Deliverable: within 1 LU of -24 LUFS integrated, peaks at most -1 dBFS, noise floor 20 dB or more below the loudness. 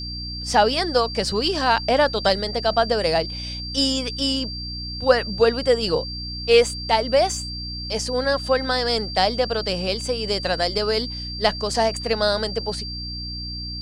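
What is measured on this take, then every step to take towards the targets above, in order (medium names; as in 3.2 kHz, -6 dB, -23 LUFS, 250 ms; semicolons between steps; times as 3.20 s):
hum 60 Hz; highest harmonic 300 Hz; hum level -31 dBFS; steady tone 4.7 kHz; tone level -31 dBFS; loudness -22.0 LUFS; peak level -2.5 dBFS; loudness target -24.0 LUFS
-> de-hum 60 Hz, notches 5; band-stop 4.7 kHz, Q 30; trim -2 dB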